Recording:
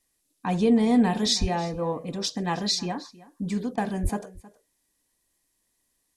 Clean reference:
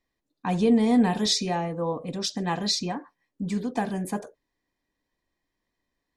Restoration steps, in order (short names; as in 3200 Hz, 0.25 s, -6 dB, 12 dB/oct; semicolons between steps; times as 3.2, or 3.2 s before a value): de-plosive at 1.4/4.02; interpolate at 3.76, 15 ms; expander -66 dBFS, range -21 dB; inverse comb 0.316 s -20 dB